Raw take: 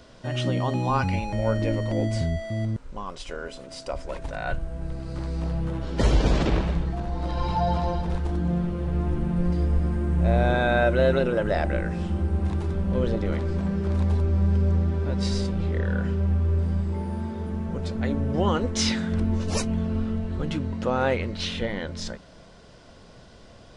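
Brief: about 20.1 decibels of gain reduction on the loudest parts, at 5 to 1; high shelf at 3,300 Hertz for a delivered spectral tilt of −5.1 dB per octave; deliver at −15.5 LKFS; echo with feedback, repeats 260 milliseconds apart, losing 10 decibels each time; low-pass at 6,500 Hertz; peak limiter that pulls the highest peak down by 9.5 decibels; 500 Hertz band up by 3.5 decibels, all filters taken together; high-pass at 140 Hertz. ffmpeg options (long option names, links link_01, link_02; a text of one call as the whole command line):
ffmpeg -i in.wav -af "highpass=140,lowpass=6500,equalizer=frequency=500:width_type=o:gain=4,highshelf=frequency=3300:gain=9,acompressor=threshold=-38dB:ratio=5,alimiter=level_in=9dB:limit=-24dB:level=0:latency=1,volume=-9dB,aecho=1:1:260|520|780|1040:0.316|0.101|0.0324|0.0104,volume=26.5dB" out.wav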